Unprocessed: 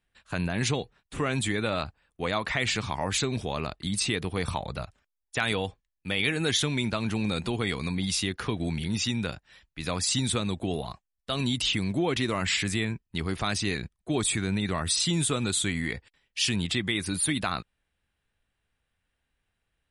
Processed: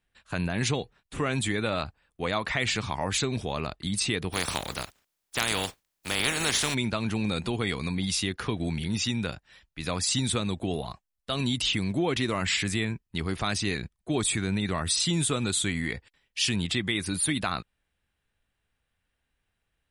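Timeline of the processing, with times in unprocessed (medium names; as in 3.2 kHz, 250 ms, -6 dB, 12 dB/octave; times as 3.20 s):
4.32–6.73 s: spectral contrast reduction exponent 0.37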